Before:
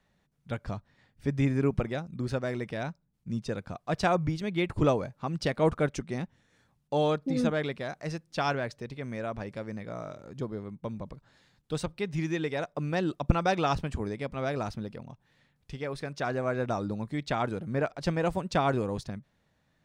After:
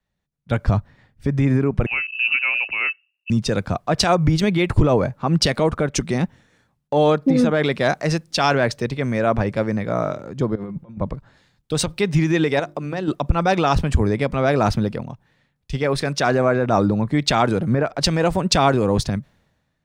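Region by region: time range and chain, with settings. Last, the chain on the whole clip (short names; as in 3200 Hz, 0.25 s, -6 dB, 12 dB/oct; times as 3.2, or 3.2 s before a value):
1.86–3.3 compressor 3:1, threshold -36 dBFS + inverted band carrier 2800 Hz + three-band expander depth 100%
10.55–10.97 comb 5.7 ms, depth 52% + negative-ratio compressor -43 dBFS, ratio -0.5
12.59–13.08 notches 50/100/150/200/250/300/350 Hz + compressor 5:1, threshold -37 dBFS
whole clip: compressor 6:1, threshold -28 dBFS; maximiser +25.5 dB; three-band expander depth 70%; gain -8 dB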